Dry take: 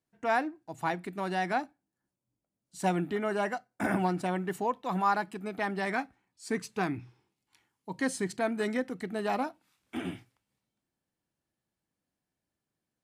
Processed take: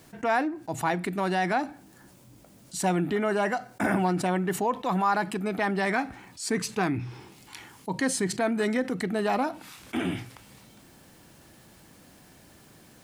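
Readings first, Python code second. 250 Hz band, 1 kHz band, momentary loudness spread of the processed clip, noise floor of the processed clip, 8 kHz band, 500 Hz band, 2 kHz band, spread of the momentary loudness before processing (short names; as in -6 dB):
+5.5 dB, +3.5 dB, 13 LU, -55 dBFS, +10.0 dB, +4.5 dB, +4.5 dB, 11 LU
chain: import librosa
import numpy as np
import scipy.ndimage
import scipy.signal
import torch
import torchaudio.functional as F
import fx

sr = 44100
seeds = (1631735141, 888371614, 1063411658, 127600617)

y = fx.env_flatten(x, sr, amount_pct=50)
y = F.gain(torch.from_numpy(y), 1.5).numpy()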